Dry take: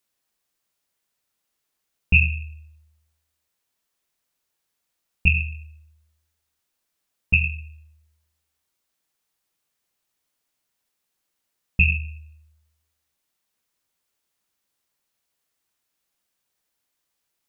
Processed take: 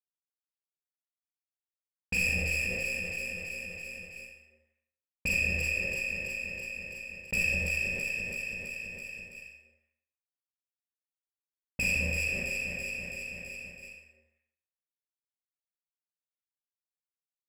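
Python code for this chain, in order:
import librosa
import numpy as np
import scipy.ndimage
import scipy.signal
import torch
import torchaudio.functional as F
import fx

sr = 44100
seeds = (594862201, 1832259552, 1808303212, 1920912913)

p1 = fx.highpass(x, sr, hz=230.0, slope=6)
p2 = fx.low_shelf(p1, sr, hz=440.0, db=3.0)
p3 = fx.quant_companded(p2, sr, bits=4)
p4 = fx.formant_cascade(p3, sr, vowel='e')
p5 = fx.tube_stage(p4, sr, drive_db=38.0, bias=0.35)
p6 = p5 + fx.echo_alternate(p5, sr, ms=165, hz=840.0, feedback_pct=57, wet_db=-3.5, dry=0)
p7 = fx.rev_schroeder(p6, sr, rt60_s=0.61, comb_ms=30, drr_db=-5.5)
p8 = fx.env_flatten(p7, sr, amount_pct=70)
y = p8 * 10.0 ** (7.0 / 20.0)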